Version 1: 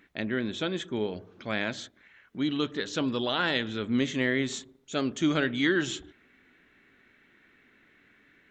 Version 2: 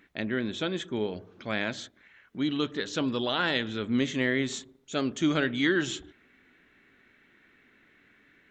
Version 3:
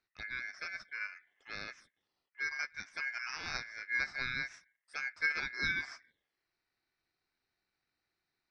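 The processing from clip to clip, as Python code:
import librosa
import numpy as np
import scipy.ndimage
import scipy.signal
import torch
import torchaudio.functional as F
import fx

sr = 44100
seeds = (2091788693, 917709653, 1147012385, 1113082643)

y1 = x
y2 = fx.env_phaser(y1, sr, low_hz=250.0, high_hz=1300.0, full_db=-29.0)
y2 = y2 * np.sin(2.0 * np.pi * 1900.0 * np.arange(len(y2)) / sr)
y2 = fx.upward_expand(y2, sr, threshold_db=-47.0, expansion=1.5)
y2 = y2 * 10.0 ** (-3.0 / 20.0)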